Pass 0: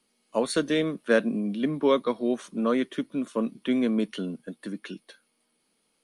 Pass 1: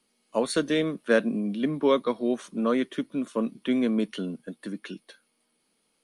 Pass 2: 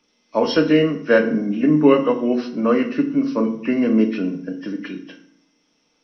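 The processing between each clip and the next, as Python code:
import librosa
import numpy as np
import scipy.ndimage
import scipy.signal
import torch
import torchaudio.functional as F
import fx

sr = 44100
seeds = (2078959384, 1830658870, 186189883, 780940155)

y1 = x
y2 = fx.freq_compress(y1, sr, knee_hz=1800.0, ratio=1.5)
y2 = fx.rev_fdn(y2, sr, rt60_s=0.63, lf_ratio=1.55, hf_ratio=0.75, size_ms=20.0, drr_db=4.5)
y2 = y2 * 10.0 ** (6.0 / 20.0)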